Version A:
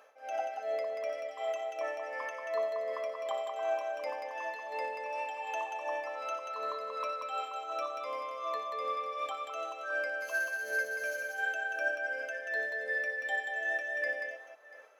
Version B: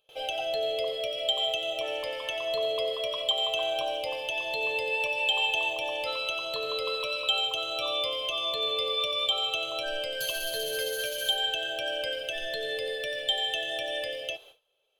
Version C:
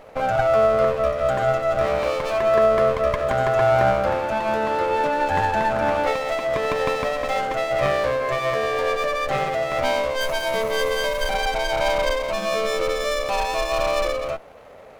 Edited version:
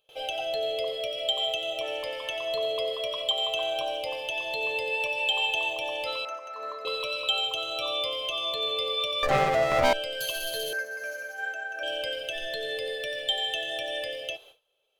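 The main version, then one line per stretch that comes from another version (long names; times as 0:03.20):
B
0:06.25–0:06.85: punch in from A
0:09.23–0:09.93: punch in from C
0:10.73–0:11.83: punch in from A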